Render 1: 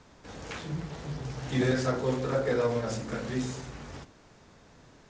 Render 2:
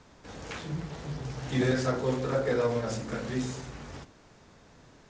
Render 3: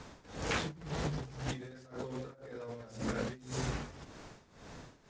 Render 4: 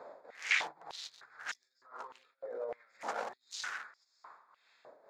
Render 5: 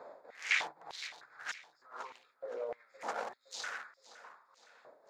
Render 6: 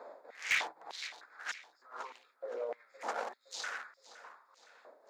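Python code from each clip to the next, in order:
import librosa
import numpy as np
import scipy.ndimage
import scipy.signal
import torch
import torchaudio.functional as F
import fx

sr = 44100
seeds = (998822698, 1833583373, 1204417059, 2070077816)

y1 = x
y2 = fx.over_compress(y1, sr, threshold_db=-38.0, ratio=-1.0)
y2 = y2 * (1.0 - 0.85 / 2.0 + 0.85 / 2.0 * np.cos(2.0 * np.pi * 1.9 * (np.arange(len(y2)) / sr)))
y2 = y2 * librosa.db_to_amplitude(1.0)
y3 = fx.wiener(y2, sr, points=15)
y3 = fx.filter_held_highpass(y3, sr, hz=3.3, low_hz=580.0, high_hz=5400.0)
y4 = fx.rider(y3, sr, range_db=4, speed_s=2.0)
y4 = fx.echo_feedback(y4, sr, ms=515, feedback_pct=46, wet_db=-16.5)
y4 = y4 * librosa.db_to_amplitude(-3.0)
y5 = scipy.signal.sosfilt(scipy.signal.butter(4, 220.0, 'highpass', fs=sr, output='sos'), y4)
y5 = np.clip(y5, -10.0 ** (-24.0 / 20.0), 10.0 ** (-24.0 / 20.0))
y5 = y5 * librosa.db_to_amplitude(1.0)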